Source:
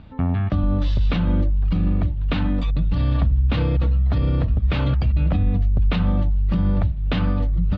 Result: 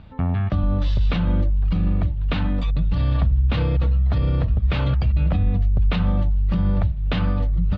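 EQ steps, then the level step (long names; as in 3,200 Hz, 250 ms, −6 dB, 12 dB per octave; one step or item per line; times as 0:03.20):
parametric band 280 Hz −5 dB 0.59 octaves
0.0 dB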